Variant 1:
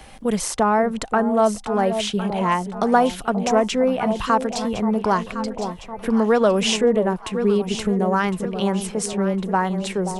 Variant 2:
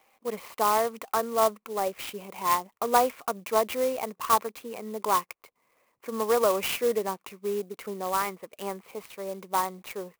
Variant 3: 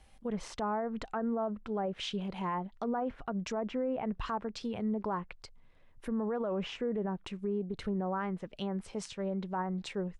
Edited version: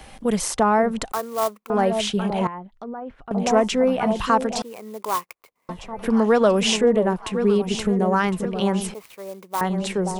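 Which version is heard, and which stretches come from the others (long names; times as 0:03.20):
1
0:01.12–0:01.70: punch in from 2
0:02.47–0:03.31: punch in from 3
0:04.62–0:05.69: punch in from 2
0:08.94–0:09.61: punch in from 2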